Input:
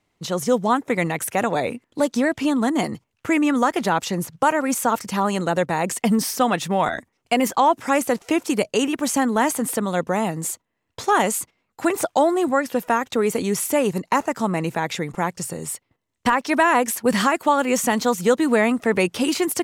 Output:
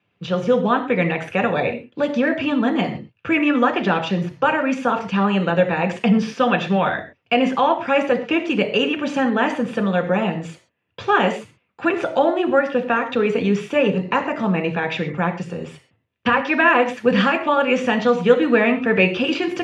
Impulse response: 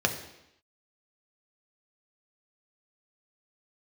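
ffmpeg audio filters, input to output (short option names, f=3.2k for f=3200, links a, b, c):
-filter_complex "[0:a]lowpass=f=2.9k:t=q:w=2.1[a];[1:a]atrim=start_sample=2205,atrim=end_sample=6174[b];[a][b]afir=irnorm=-1:irlink=0,volume=-10.5dB"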